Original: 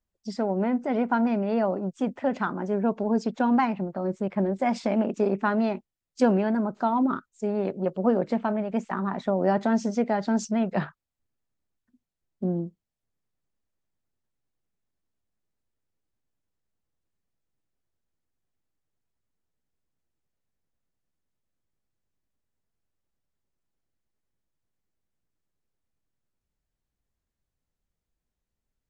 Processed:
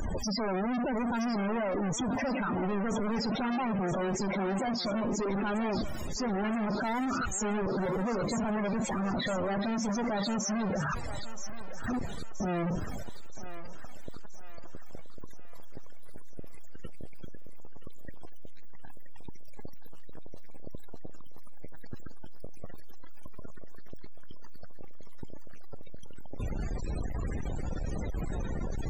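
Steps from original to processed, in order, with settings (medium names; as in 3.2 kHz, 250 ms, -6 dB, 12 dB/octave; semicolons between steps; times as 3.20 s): one-bit comparator; loudest bins only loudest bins 32; thinning echo 975 ms, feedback 54%, high-pass 730 Hz, level -9 dB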